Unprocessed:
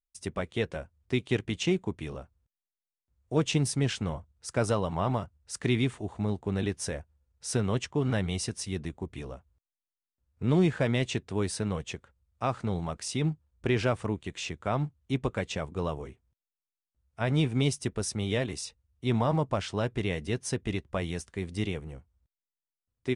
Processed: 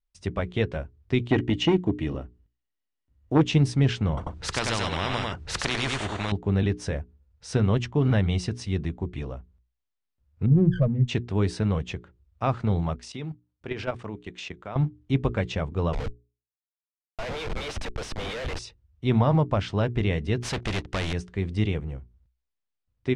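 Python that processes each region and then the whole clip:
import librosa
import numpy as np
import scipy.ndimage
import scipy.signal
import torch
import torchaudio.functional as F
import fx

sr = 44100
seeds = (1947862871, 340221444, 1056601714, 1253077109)

y = fx.chain(x, sr, fx.small_body(hz=(290.0, 1900.0, 2900.0), ring_ms=45, db=11),
    fx.transformer_sat(knee_hz=550.0), at=(1.3, 3.41))
y = fx.chain(y, sr, fx.echo_single(ms=94, db=-5.5),
    fx.spectral_comp(ratio=4.0), at=(4.17, 6.32))
y = fx.chain(y, sr, fx.spec_expand(power=3.5),
    fx.running_max(window=9), at=(10.46, 11.08))
y = fx.chain(y, sr, fx.highpass(hz=64.0, slope=12),
    fx.low_shelf(hz=190.0, db=-10.5),
    fx.level_steps(step_db=13), at=(12.96, 14.76))
y = fx.chain(y, sr, fx.cheby1_highpass(hz=450.0, order=8),
    fx.high_shelf(hz=2800.0, db=8.0),
    fx.schmitt(flips_db=-42.5), at=(15.93, 18.59))
y = fx.chain(y, sr, fx.leveller(passes=3),
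    fx.spectral_comp(ratio=2.0), at=(20.42, 21.13))
y = scipy.signal.sosfilt(scipy.signal.butter(2, 4400.0, 'lowpass', fs=sr, output='sos'), y)
y = fx.low_shelf(y, sr, hz=140.0, db=9.5)
y = fx.hum_notches(y, sr, base_hz=60, count=7)
y = y * librosa.db_to_amplitude(3.0)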